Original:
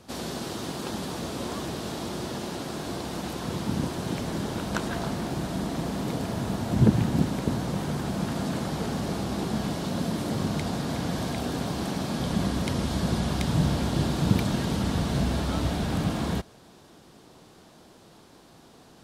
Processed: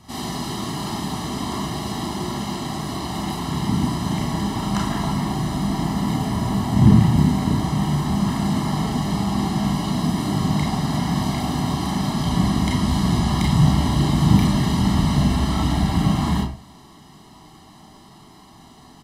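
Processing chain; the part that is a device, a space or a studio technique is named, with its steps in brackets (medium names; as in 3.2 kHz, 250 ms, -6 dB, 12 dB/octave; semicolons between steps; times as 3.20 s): microphone above a desk (comb 1 ms, depth 89%; reverberation RT60 0.40 s, pre-delay 29 ms, DRR -2 dB)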